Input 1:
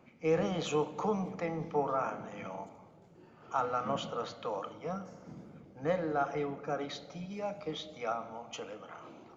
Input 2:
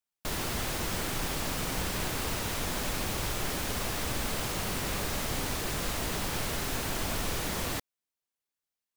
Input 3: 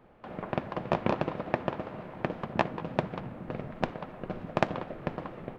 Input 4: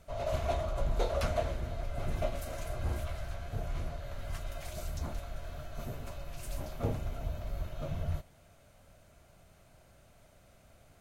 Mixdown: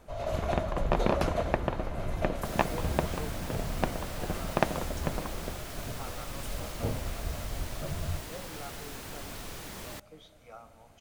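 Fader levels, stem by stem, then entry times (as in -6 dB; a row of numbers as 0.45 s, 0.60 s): -14.0 dB, -9.5 dB, 0.0 dB, +0.5 dB; 2.45 s, 2.20 s, 0.00 s, 0.00 s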